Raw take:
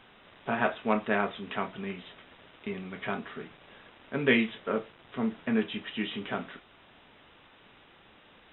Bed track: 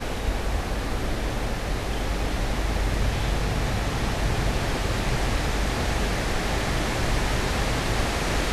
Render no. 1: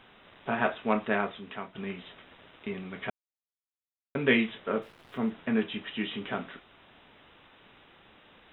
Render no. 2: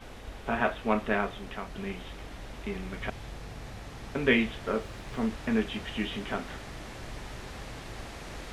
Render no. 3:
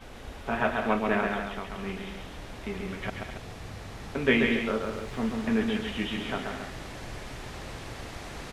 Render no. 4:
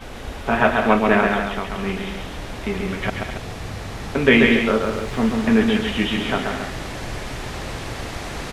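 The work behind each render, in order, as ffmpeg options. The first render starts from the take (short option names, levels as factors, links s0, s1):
-filter_complex "[0:a]asettb=1/sr,asplit=3[s0][s1][s2];[s0]atrim=end=4.824[s3];[s1]atrim=start=4.82:end=5.3,asetpts=PTS-STARTPTS,afade=t=in:d=0.004:c=qsin,afade=t=out:st=0.476:d=0.004:c=qsin,aeval=exprs='val(0)*gte(abs(val(0)),0.0015)':c=same[s4];[s2]atrim=start=5.296[s5];[s3][s4]acrossfade=d=0.004:c1=hsin:c2=qsin[s6];[s6][s5]acrossfade=d=0.004:c1=qsin:c2=hsin,asplit=4[s7][s8][s9][s10];[s7]atrim=end=1.75,asetpts=PTS-STARTPTS,afade=t=out:st=1.1:d=0.65:silence=0.316228[s11];[s8]atrim=start=1.75:end=3.1,asetpts=PTS-STARTPTS,afade=t=in:d=0.004:c=hsin:silence=0.316228,afade=t=out:st=1.346:d=0.004:c=hsin[s12];[s9]atrim=start=3.1:end=4.15,asetpts=PTS-STARTPTS,volume=0[s13];[s10]atrim=start=4.15,asetpts=PTS-STARTPTS,afade=t=in:d=0.004:c=hsin[s14];[s11][s12][s13][s14]concat=n=4:v=0:a=1"
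-filter_complex "[1:a]volume=0.141[s0];[0:a][s0]amix=inputs=2:normalize=0"
-af "aecho=1:1:134.1|207|277:0.631|0.316|0.316"
-af "volume=3.16,alimiter=limit=0.891:level=0:latency=1"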